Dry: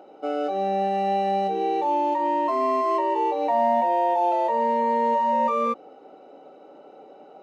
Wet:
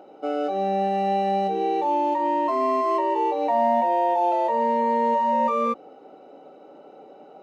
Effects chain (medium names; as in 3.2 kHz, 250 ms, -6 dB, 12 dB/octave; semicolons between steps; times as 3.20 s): bass shelf 140 Hz +7.5 dB